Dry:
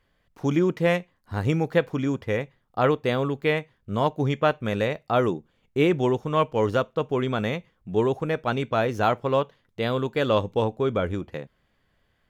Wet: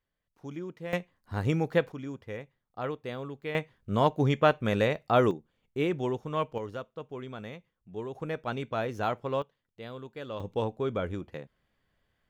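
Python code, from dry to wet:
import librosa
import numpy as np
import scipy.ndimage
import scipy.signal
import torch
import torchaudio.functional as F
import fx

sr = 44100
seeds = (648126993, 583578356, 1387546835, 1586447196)

y = fx.gain(x, sr, db=fx.steps((0.0, -17.0), (0.93, -4.0), (1.92, -13.0), (3.55, -1.0), (5.31, -8.0), (6.58, -15.0), (8.15, -8.0), (9.42, -16.5), (10.4, -6.5)))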